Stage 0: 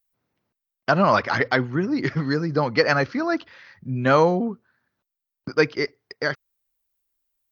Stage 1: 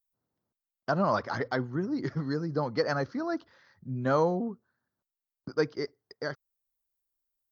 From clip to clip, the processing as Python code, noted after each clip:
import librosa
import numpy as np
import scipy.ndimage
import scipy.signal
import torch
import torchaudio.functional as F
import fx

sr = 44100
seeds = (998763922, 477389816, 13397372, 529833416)

y = fx.peak_eq(x, sr, hz=2500.0, db=-14.0, octaves=0.9)
y = F.gain(torch.from_numpy(y), -7.5).numpy()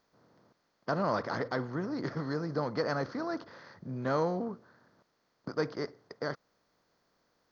y = fx.bin_compress(x, sr, power=0.6)
y = F.gain(torch.from_numpy(y), -6.5).numpy()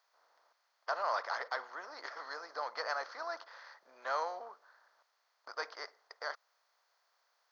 y = scipy.signal.sosfilt(scipy.signal.butter(4, 700.0, 'highpass', fs=sr, output='sos'), x)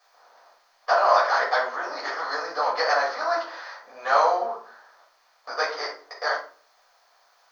y = fx.room_shoebox(x, sr, seeds[0], volume_m3=290.0, walls='furnished', distance_m=5.9)
y = F.gain(torch.from_numpy(y), 5.5).numpy()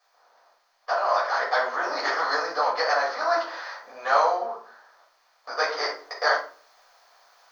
y = fx.rider(x, sr, range_db=5, speed_s=0.5)